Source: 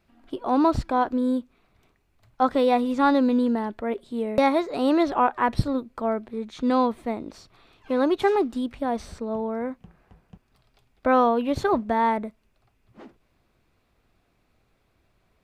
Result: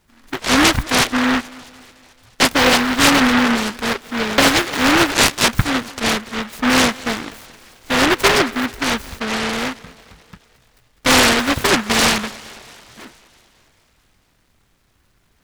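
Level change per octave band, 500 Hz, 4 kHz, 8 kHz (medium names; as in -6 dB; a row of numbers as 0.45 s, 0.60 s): +2.5 dB, +23.5 dB, no reading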